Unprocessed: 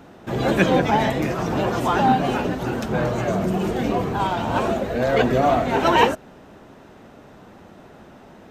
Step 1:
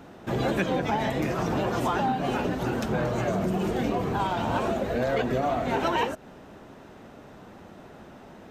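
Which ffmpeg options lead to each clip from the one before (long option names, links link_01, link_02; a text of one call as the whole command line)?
ffmpeg -i in.wav -af "acompressor=threshold=-21dB:ratio=6,volume=-1.5dB" out.wav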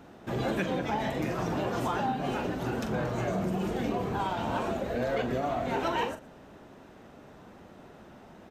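ffmpeg -i in.wav -af "aecho=1:1:42|119:0.335|0.106,volume=-4.5dB" out.wav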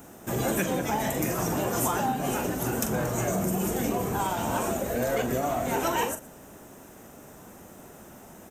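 ffmpeg -i in.wav -af "aexciter=amount=8.8:drive=5.2:freq=6200,volume=2.5dB" out.wav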